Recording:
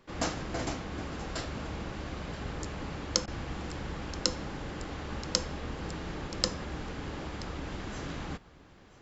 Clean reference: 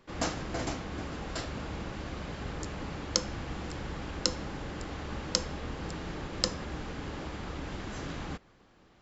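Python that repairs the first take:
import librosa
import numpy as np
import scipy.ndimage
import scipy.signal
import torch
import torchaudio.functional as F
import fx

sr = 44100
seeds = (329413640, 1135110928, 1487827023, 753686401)

y = fx.fix_interpolate(x, sr, at_s=(3.26,), length_ms=15.0)
y = fx.fix_echo_inverse(y, sr, delay_ms=978, level_db=-19.0)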